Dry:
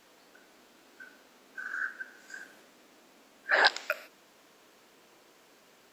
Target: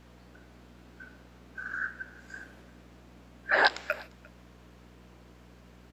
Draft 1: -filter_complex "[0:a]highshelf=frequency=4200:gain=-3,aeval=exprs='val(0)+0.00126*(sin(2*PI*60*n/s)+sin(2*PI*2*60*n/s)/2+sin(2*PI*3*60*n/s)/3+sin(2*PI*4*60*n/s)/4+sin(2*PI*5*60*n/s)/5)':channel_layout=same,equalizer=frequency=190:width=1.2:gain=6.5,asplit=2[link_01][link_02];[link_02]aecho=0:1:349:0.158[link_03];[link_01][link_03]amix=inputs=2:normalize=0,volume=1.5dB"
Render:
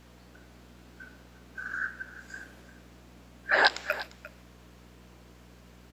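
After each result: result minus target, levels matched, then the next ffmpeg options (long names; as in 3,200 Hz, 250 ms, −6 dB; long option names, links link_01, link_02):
echo-to-direct +8.5 dB; 8,000 Hz band +4.0 dB
-filter_complex "[0:a]highshelf=frequency=4200:gain=-3,aeval=exprs='val(0)+0.00126*(sin(2*PI*60*n/s)+sin(2*PI*2*60*n/s)/2+sin(2*PI*3*60*n/s)/3+sin(2*PI*4*60*n/s)/4+sin(2*PI*5*60*n/s)/5)':channel_layout=same,equalizer=frequency=190:width=1.2:gain=6.5,asplit=2[link_01][link_02];[link_02]aecho=0:1:349:0.0596[link_03];[link_01][link_03]amix=inputs=2:normalize=0,volume=1.5dB"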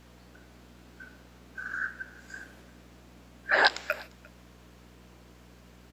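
8,000 Hz band +4.0 dB
-filter_complex "[0:a]highshelf=frequency=4200:gain=-9.5,aeval=exprs='val(0)+0.00126*(sin(2*PI*60*n/s)+sin(2*PI*2*60*n/s)/2+sin(2*PI*3*60*n/s)/3+sin(2*PI*4*60*n/s)/4+sin(2*PI*5*60*n/s)/5)':channel_layout=same,equalizer=frequency=190:width=1.2:gain=6.5,asplit=2[link_01][link_02];[link_02]aecho=0:1:349:0.0596[link_03];[link_01][link_03]amix=inputs=2:normalize=0,volume=1.5dB"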